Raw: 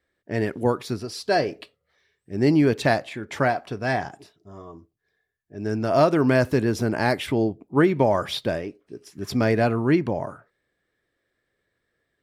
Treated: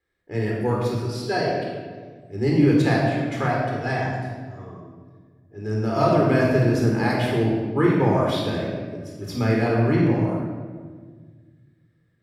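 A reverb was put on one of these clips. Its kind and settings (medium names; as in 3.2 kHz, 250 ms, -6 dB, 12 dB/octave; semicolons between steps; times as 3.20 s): simulated room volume 1700 m³, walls mixed, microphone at 4 m; trim -7 dB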